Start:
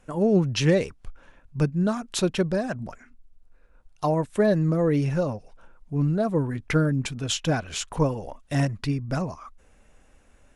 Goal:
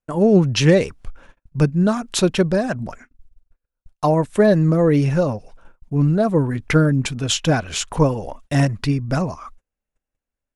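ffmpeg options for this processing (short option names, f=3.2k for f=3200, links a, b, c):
-af "agate=range=-36dB:threshold=-47dB:ratio=16:detection=peak,volume=6.5dB"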